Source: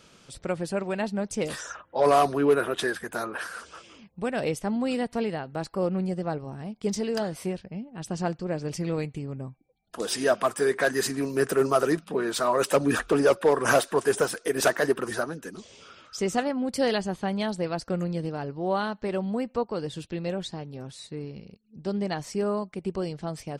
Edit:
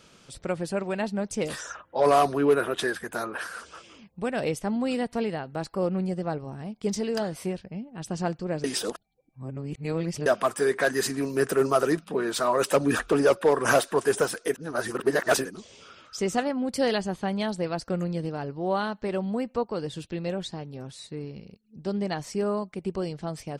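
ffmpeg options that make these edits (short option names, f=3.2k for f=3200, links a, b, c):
-filter_complex "[0:a]asplit=5[a][b][c][d][e];[a]atrim=end=8.642[f];[b]atrim=start=8.638:end=10.262,asetpts=PTS-STARTPTS,areverse[g];[c]atrim=start=10.258:end=14.542[h];[d]atrim=start=14.538:end=15.452,asetpts=PTS-STARTPTS,areverse[i];[e]atrim=start=15.448[j];[f][g]acrossfade=d=0.004:c1=hsin:c2=hsin[k];[k][h]acrossfade=d=0.004:c1=hsin:c2=hsin[l];[l][i]acrossfade=d=0.004:c1=hsin:c2=hsin[m];[m][j]acrossfade=d=0.004:c1=hsin:c2=hsin"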